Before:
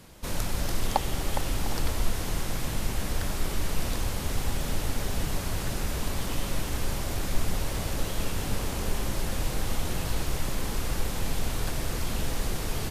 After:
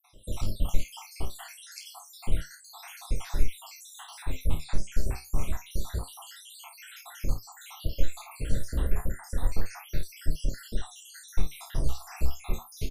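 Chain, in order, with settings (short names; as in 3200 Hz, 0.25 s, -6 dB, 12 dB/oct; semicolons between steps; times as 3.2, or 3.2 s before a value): random spectral dropouts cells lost 80%; low shelf 71 Hz +11 dB; early reflections 31 ms -7.5 dB, 50 ms -10 dB; flange 0.29 Hz, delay 6.4 ms, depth 9.8 ms, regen +62%; gain +2 dB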